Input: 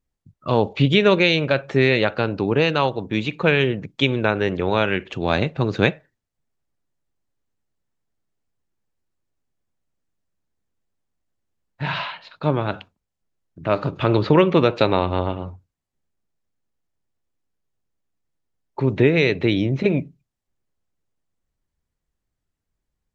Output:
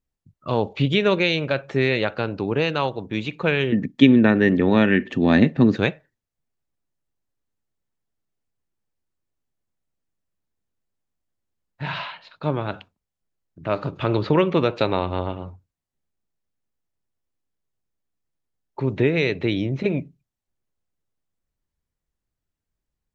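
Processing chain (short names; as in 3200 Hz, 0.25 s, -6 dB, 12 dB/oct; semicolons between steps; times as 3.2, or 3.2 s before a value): 3.72–5.77 small resonant body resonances 240/1800 Hz, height 18 dB, ringing for 40 ms; gain -3.5 dB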